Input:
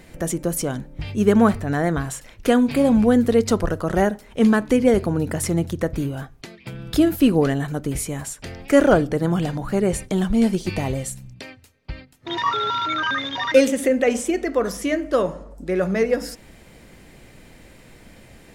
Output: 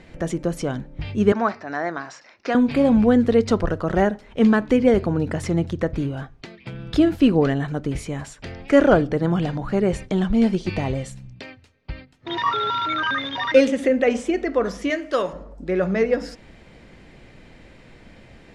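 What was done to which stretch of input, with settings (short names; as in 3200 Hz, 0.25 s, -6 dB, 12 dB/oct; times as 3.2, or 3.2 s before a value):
1.32–2.55 speaker cabinet 430–5900 Hz, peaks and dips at 470 Hz -7 dB, 3200 Hz -10 dB, 5300 Hz +8 dB
14.9–15.33 tilt +3 dB/oct
whole clip: LPF 4500 Hz 12 dB/oct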